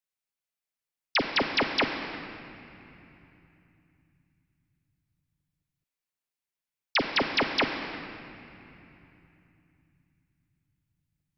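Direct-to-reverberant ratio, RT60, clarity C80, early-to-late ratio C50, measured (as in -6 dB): 3.5 dB, 2.9 s, 6.5 dB, 5.5 dB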